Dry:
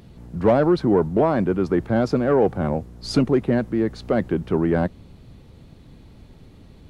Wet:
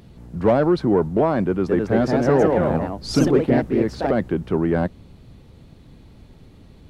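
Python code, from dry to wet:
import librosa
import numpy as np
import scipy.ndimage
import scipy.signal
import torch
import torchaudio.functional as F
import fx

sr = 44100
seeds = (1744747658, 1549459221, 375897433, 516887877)

y = fx.echo_pitch(x, sr, ms=225, semitones=2, count=2, db_per_echo=-3.0, at=(1.46, 4.18))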